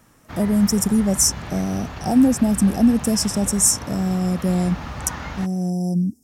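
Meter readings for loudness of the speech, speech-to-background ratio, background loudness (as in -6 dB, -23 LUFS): -20.0 LUFS, 13.5 dB, -33.5 LUFS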